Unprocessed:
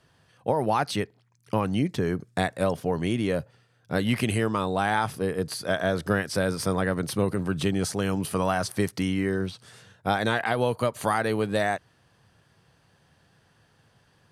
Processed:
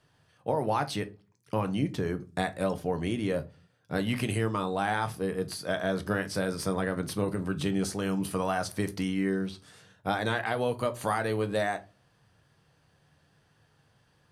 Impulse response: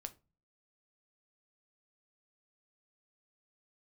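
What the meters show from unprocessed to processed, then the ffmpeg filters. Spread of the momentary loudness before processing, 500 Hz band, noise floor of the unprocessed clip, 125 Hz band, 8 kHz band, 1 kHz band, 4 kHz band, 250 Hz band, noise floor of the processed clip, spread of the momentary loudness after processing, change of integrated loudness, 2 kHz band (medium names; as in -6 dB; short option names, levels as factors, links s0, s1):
5 LU, -4.0 dB, -64 dBFS, -4.0 dB, -4.5 dB, -4.0 dB, -4.5 dB, -3.5 dB, -67 dBFS, 5 LU, -4.0 dB, -4.0 dB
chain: -filter_complex "[1:a]atrim=start_sample=2205[s0];[0:a][s0]afir=irnorm=-1:irlink=0"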